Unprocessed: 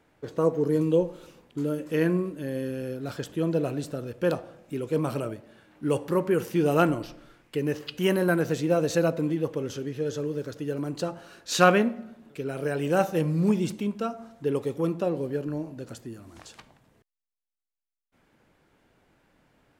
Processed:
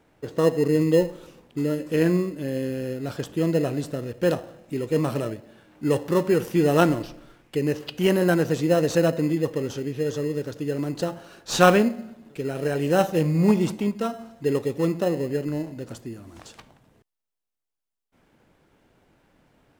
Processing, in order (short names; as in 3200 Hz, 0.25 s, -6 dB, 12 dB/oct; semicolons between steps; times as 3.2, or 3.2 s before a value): in parallel at -8.5 dB: sample-and-hold 19×; 13.35–13.89 on the sum: bell 830 Hz +7 dB 1.2 oct; gain +1 dB